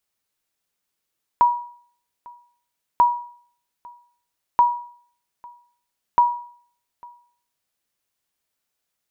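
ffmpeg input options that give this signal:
-f lavfi -i "aevalsrc='0.398*(sin(2*PI*963*mod(t,1.59))*exp(-6.91*mod(t,1.59)/0.53)+0.0473*sin(2*PI*963*max(mod(t,1.59)-0.85,0))*exp(-6.91*max(mod(t,1.59)-0.85,0)/0.53))':d=6.36:s=44100"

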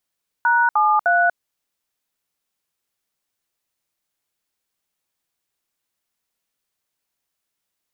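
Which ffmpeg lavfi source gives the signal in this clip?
-f lavfi -i "aevalsrc='0.158*clip(min(mod(t,0.304),0.24-mod(t,0.304))/0.002,0,1)*(eq(floor(t/0.304),0)*(sin(2*PI*941*mod(t,0.304))+sin(2*PI*1477*mod(t,0.304)))+eq(floor(t/0.304),1)*(sin(2*PI*852*mod(t,0.304))+sin(2*PI*1209*mod(t,0.304)))+eq(floor(t/0.304),2)*(sin(2*PI*697*mod(t,0.304))+sin(2*PI*1477*mod(t,0.304))))':d=0.912:s=44100"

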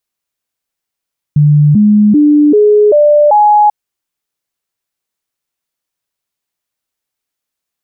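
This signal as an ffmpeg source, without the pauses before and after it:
-f lavfi -i "aevalsrc='0.668*clip(min(mod(t,0.39),0.39-mod(t,0.39))/0.005,0,1)*sin(2*PI*148*pow(2,floor(t/0.39)/2)*mod(t,0.39))':d=2.34:s=44100"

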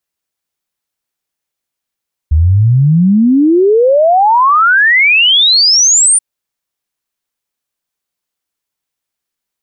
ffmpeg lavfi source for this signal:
-f lavfi -i "aevalsrc='0.562*clip(min(t,3.88-t)/0.01,0,1)*sin(2*PI*73*3.88/log(9400/73)*(exp(log(9400/73)*t/3.88)-1))':d=3.88:s=44100"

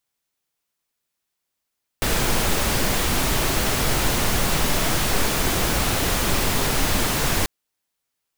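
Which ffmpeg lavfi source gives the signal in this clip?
-f lavfi -i "anoisesrc=c=pink:a=0.484:d=5.44:r=44100:seed=1"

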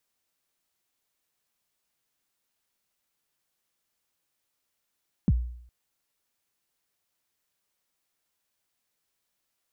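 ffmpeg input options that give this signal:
-f lavfi -i "aevalsrc='0.168*pow(10,-3*t/0.66)*sin(2*PI*(250*0.039/log(60/250)*(exp(log(60/250)*min(t,0.039)/0.039)-1)+60*max(t-0.039,0)))':d=0.41:s=44100"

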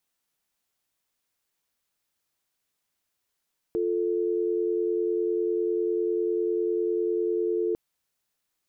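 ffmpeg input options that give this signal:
-f lavfi -i "aevalsrc='0.0501*(sin(2*PI*350*t)+sin(2*PI*440*t))':d=4:s=44100"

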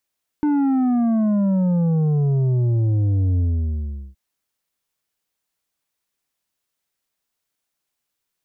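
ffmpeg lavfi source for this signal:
-f lavfi -i "aevalsrc='0.15*clip((3.72-t)/0.76,0,1)*tanh(2.24*sin(2*PI*300*3.72/log(65/300)*(exp(log(65/300)*t/3.72)-1)))/tanh(2.24)':d=3.72:s=44100"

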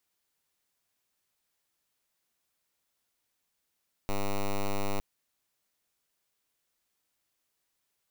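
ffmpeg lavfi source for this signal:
-f lavfi -i "aevalsrc='0.0398*(2*lt(mod(100*t,1),0.06)-1)':d=0.91:s=44100"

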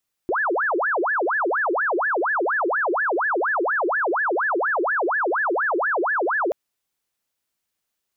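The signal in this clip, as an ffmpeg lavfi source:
-f lavfi -i "aevalsrc='0.112*sin(2*PI*(1042.5*t-707.5/(2*PI*4.2)*sin(2*PI*4.2*t)))':d=6.23:s=44100"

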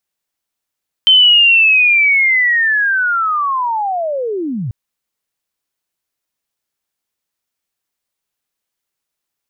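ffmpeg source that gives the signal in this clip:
-f lavfi -i "aevalsrc='pow(10,(-4.5-13.5*t/3.64)/20)*sin(2*PI*(3100*t-3000*t*t/(2*3.64)))':d=3.64:s=44100"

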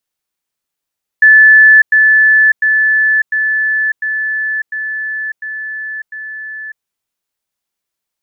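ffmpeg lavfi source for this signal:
-f lavfi -i "aevalsrc='pow(10,(-2-3*floor(t/0.7))/20)*sin(2*PI*1740*t)*clip(min(mod(t,0.7),0.6-mod(t,0.7))/0.005,0,1)':d=5.6:s=44100"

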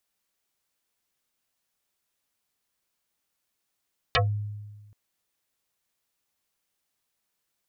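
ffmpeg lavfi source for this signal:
-f lavfi -i "aevalsrc='0.133*pow(10,-3*t/1.39)*sin(2*PI*104*t+8.6*pow(10,-3*t/0.15)*sin(2*PI*5.77*104*t))':d=0.78:s=44100"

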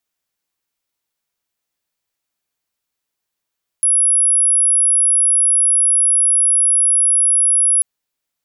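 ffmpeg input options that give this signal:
-f lavfi -i "sine=f=10500:d=3.99:r=44100,volume=7.56dB"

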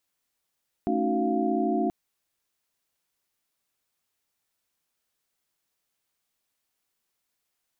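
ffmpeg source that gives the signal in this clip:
-f lavfi -i "aevalsrc='0.0355*(sin(2*PI*220*t)+sin(2*PI*277.18*t)+sin(2*PI*311.13*t)+sin(2*PI*369.99*t)+sin(2*PI*698.46*t))':d=1.03:s=44100"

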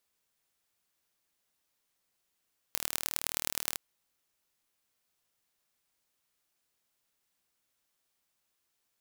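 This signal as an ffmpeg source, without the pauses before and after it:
-f lavfi -i "aevalsrc='0.841*eq(mod(n,1140),0)*(0.5+0.5*eq(mod(n,4560),0))':d=1.01:s=44100"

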